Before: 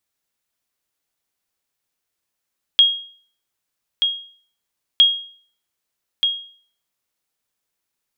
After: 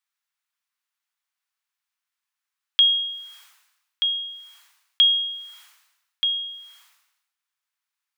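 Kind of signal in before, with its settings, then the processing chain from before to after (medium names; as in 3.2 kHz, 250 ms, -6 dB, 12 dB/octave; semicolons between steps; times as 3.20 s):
sonar ping 3.27 kHz, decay 0.48 s, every 2.21 s, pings 2, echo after 1.23 s, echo -6.5 dB -5 dBFS
high-pass 1 kHz 24 dB/octave; treble shelf 4 kHz -9 dB; decay stretcher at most 61 dB/s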